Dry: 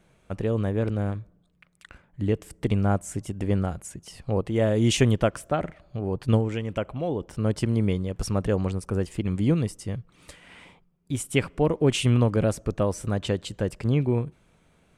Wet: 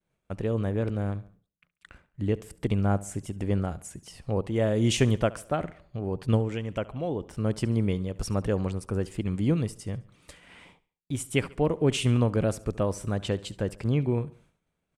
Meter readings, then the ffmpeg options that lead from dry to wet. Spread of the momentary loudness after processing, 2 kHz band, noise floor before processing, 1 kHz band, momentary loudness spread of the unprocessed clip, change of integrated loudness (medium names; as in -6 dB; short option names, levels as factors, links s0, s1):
11 LU, -2.5 dB, -63 dBFS, -2.5 dB, 11 LU, -2.5 dB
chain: -filter_complex "[0:a]agate=range=0.0224:threshold=0.00316:ratio=3:detection=peak,asplit=2[s0][s1];[s1]aecho=0:1:70|140|210:0.1|0.044|0.0194[s2];[s0][s2]amix=inputs=2:normalize=0,volume=0.75"